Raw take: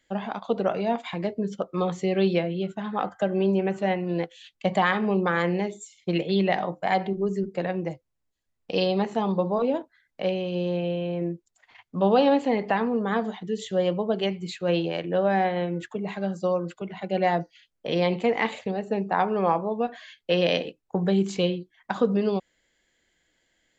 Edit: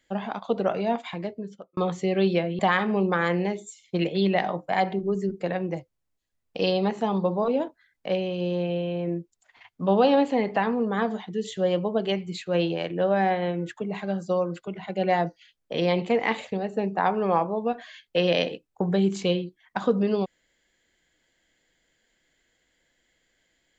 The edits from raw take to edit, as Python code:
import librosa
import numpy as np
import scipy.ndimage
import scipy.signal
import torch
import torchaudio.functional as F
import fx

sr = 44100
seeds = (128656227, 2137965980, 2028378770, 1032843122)

y = fx.edit(x, sr, fx.fade_out_span(start_s=0.97, length_s=0.8),
    fx.cut(start_s=2.59, length_s=2.14), tone=tone)